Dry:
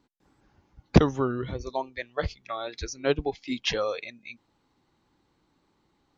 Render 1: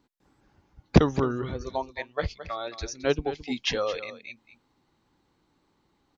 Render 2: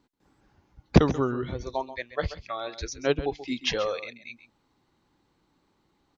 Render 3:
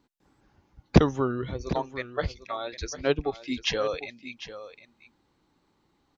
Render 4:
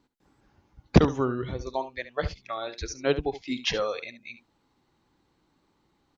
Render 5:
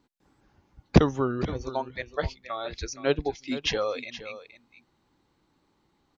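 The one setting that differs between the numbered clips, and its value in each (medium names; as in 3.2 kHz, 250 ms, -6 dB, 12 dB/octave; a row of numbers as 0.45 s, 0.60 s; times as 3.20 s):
delay, time: 218 ms, 134 ms, 750 ms, 71 ms, 470 ms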